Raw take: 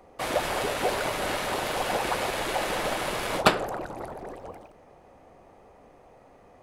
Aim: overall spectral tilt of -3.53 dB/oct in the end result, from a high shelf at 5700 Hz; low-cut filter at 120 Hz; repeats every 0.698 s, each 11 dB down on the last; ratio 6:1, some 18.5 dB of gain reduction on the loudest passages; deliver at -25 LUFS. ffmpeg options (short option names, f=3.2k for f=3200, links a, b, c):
-af "highpass=120,highshelf=f=5.7k:g=-8.5,acompressor=threshold=-35dB:ratio=6,aecho=1:1:698|1396|2094:0.282|0.0789|0.0221,volume=13.5dB"